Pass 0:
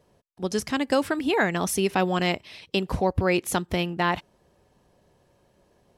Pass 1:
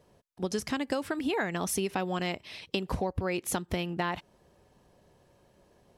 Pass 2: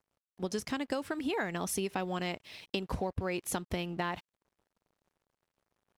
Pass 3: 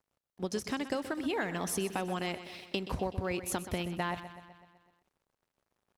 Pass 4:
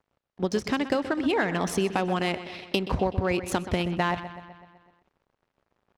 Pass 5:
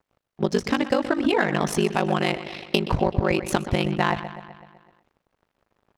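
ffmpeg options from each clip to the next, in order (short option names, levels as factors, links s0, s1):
-af "acompressor=threshold=0.0447:ratio=6"
-af "aeval=exprs='sgn(val(0))*max(abs(val(0))-0.00133,0)':c=same,volume=0.708"
-af "aecho=1:1:126|252|378|504|630|756|882:0.224|0.134|0.0806|0.0484|0.029|0.0174|0.0104"
-af "adynamicsmooth=sensitivity=7.5:basefreq=3900,volume=2.66"
-af "aeval=exprs='val(0)*sin(2*PI*25*n/s)':c=same,volume=2.11"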